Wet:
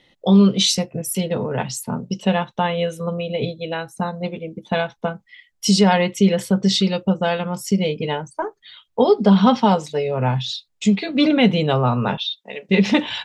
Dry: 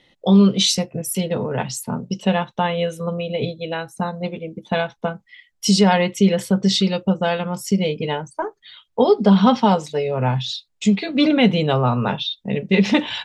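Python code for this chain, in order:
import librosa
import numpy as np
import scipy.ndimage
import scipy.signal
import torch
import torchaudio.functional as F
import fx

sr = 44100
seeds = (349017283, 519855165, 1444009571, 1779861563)

y = fx.highpass(x, sr, hz=670.0, slope=12, at=(12.17, 12.69))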